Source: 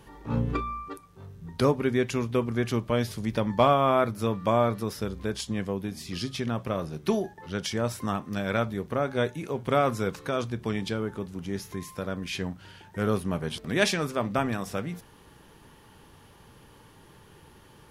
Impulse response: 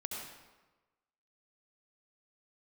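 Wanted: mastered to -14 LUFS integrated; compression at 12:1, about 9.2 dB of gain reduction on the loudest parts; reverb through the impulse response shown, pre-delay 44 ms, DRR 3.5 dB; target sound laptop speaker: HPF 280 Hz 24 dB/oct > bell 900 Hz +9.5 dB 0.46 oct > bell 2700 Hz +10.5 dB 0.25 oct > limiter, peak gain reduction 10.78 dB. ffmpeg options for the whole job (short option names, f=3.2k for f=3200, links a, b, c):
-filter_complex "[0:a]acompressor=threshold=-25dB:ratio=12,asplit=2[a][b];[1:a]atrim=start_sample=2205,adelay=44[c];[b][c]afir=irnorm=-1:irlink=0,volume=-4dB[d];[a][d]amix=inputs=2:normalize=0,highpass=f=280:w=0.5412,highpass=f=280:w=1.3066,equalizer=f=900:t=o:w=0.46:g=9.5,equalizer=f=2.7k:t=o:w=0.25:g=10.5,volume=19.5dB,alimiter=limit=-3dB:level=0:latency=1"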